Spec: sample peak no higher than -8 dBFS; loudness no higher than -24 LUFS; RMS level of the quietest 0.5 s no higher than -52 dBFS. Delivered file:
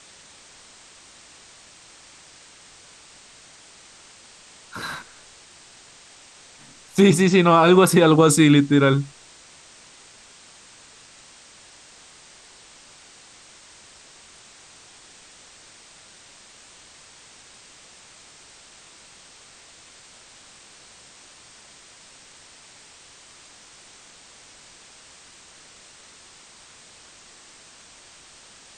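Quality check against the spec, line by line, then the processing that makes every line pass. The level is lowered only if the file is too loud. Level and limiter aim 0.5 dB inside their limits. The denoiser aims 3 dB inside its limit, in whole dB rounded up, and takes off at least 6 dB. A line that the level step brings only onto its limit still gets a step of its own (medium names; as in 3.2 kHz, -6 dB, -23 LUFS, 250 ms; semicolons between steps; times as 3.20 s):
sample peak -4.5 dBFS: fail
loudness -16.5 LUFS: fail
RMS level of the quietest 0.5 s -49 dBFS: fail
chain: trim -8 dB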